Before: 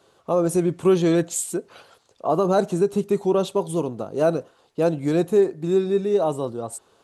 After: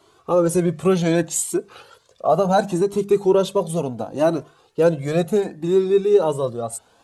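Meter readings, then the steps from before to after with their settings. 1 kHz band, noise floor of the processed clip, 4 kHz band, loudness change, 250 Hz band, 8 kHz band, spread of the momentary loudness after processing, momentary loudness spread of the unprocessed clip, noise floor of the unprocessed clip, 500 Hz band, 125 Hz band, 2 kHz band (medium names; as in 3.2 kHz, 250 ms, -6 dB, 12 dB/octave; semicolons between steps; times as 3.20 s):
+3.5 dB, -58 dBFS, +3.5 dB, +2.0 dB, +1.0 dB, +3.5 dB, 9 LU, 10 LU, -60 dBFS, +2.5 dB, +2.5 dB, +4.5 dB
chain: hum notches 50/100/150/200 Hz; Shepard-style flanger rising 0.69 Hz; trim +8 dB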